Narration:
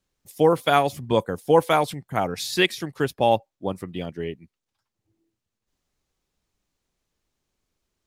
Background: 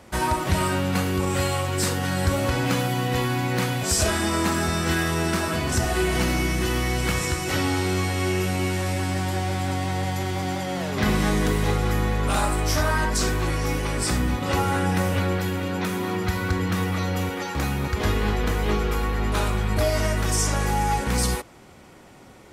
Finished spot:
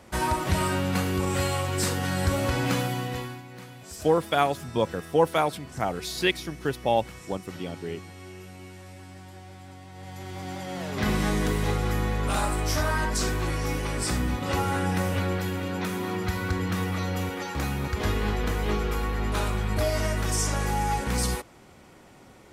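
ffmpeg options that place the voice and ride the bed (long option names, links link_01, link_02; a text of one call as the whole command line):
ffmpeg -i stem1.wav -i stem2.wav -filter_complex "[0:a]adelay=3650,volume=-4dB[link_01];[1:a]volume=13.5dB,afade=type=out:start_time=2.77:duration=0.66:silence=0.141254,afade=type=in:start_time=9.92:duration=1.2:silence=0.158489[link_02];[link_01][link_02]amix=inputs=2:normalize=0" out.wav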